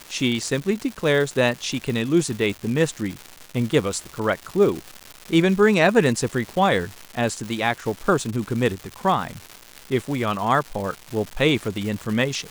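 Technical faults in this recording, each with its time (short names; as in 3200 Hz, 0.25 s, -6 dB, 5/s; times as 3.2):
crackle 390/s -28 dBFS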